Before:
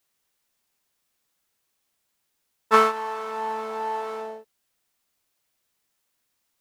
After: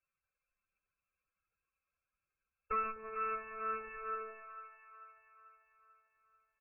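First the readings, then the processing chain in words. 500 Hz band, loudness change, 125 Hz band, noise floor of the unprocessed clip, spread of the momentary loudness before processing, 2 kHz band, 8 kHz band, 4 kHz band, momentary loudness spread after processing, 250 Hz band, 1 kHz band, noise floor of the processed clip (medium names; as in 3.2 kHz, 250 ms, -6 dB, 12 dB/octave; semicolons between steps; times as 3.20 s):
-18.0 dB, -15.0 dB, no reading, -76 dBFS, 17 LU, -14.0 dB, under -30 dB, under -40 dB, 20 LU, -20.0 dB, -14.5 dB, under -85 dBFS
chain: spectral contrast enhancement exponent 2; low-pass that closes with the level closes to 920 Hz, closed at -27 dBFS; peaking EQ 580 Hz -11.5 dB 1.7 oct; comb 3.8 ms, depth 46%; compression 6:1, threshold -34 dBFS, peak gain reduction 12.5 dB; Chebyshev shaper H 7 -20 dB, 8 -22 dB, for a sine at -23.5 dBFS; static phaser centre 1.3 kHz, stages 8; saturation -37.5 dBFS, distortion -9 dB; phaser 1.3 Hz, delay 2 ms, feedback 29%; brick-wall FIR low-pass 2.7 kHz; on a send: two-band feedback delay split 750 Hz, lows 126 ms, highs 441 ms, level -9 dB; on the sum: trim +7.5 dB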